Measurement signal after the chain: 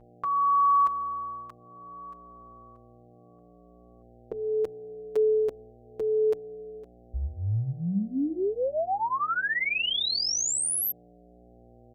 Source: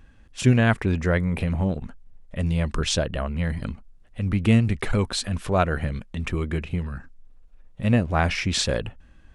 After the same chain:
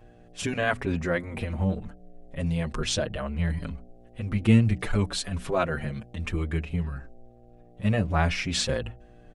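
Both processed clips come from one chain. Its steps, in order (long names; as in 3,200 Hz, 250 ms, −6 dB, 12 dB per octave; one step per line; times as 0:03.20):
hum with harmonics 60 Hz, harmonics 13, −50 dBFS −3 dB per octave
hum removal 61.33 Hz, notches 5
barber-pole flanger 6.1 ms −0.66 Hz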